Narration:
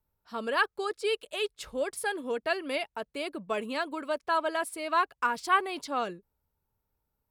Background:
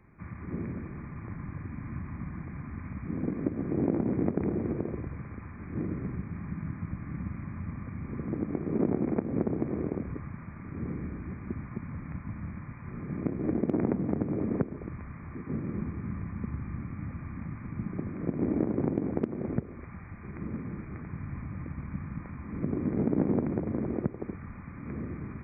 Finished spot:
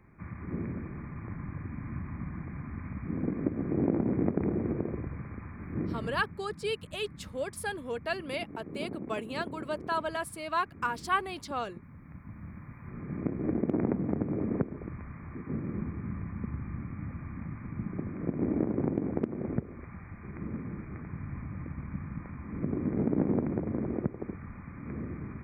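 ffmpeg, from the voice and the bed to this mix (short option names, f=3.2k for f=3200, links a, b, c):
-filter_complex "[0:a]adelay=5600,volume=-3.5dB[a];[1:a]volume=10.5dB,afade=t=out:st=5.84:d=0.56:silence=0.266073,afade=t=in:st=11.97:d=1.28:silence=0.298538[b];[a][b]amix=inputs=2:normalize=0"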